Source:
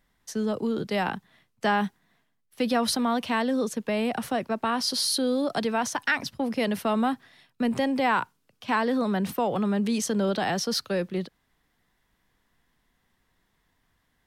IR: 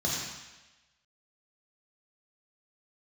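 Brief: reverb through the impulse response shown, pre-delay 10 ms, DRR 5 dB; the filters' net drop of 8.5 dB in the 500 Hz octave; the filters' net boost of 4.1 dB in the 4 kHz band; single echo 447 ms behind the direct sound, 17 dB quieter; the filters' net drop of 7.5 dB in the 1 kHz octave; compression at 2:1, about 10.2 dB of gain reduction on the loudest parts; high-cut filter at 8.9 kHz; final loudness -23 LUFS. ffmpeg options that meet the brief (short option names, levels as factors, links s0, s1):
-filter_complex "[0:a]lowpass=8900,equalizer=f=500:t=o:g=-8.5,equalizer=f=1000:t=o:g=-7,equalizer=f=4000:t=o:g=5.5,acompressor=threshold=0.0112:ratio=2,aecho=1:1:447:0.141,asplit=2[s0][s1];[1:a]atrim=start_sample=2205,adelay=10[s2];[s1][s2]afir=irnorm=-1:irlink=0,volume=0.2[s3];[s0][s3]amix=inputs=2:normalize=0,volume=3.76"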